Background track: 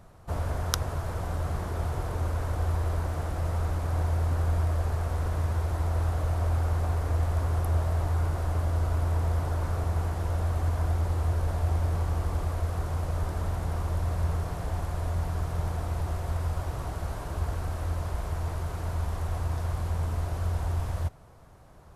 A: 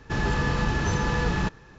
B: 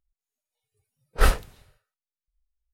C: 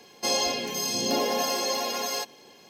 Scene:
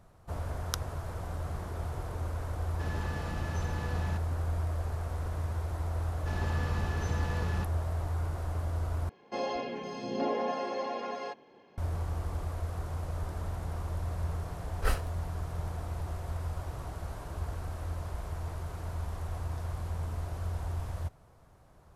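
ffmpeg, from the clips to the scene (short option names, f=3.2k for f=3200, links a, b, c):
-filter_complex "[1:a]asplit=2[a][b];[0:a]volume=-6dB[c];[3:a]lowpass=1.7k[d];[2:a]bandreject=f=3.6k:w=12[e];[c]asplit=2[f][g];[f]atrim=end=9.094[h];[d]atrim=end=2.69,asetpts=PTS-STARTPTS,volume=-4dB[i];[g]atrim=start=11.776[j];[a]atrim=end=1.78,asetpts=PTS-STARTPTS,volume=-14dB,afade=t=in:d=0.004:c=hsin,afade=t=out:st=1.776:d=0.004:c=hsin,adelay=2690[k];[b]atrim=end=1.78,asetpts=PTS-STARTPTS,volume=-12dB,afade=t=in:d=0.004:c=hsin,afade=t=out:st=1.776:d=0.004:c=hsin,adelay=6160[l];[e]atrim=end=2.73,asetpts=PTS-STARTPTS,volume=-10.5dB,afade=t=in:d=0.004:c=hsin,afade=t=out:st=2.726:d=0.004:c=hsin,adelay=601524S[m];[h][i]acrossfade=d=0.004:c1=hsin:c2=hsin[n];[n][j]acrossfade=d=0.004:c1=hsin:c2=hsin[o];[o][k][l][m]amix=inputs=4:normalize=0"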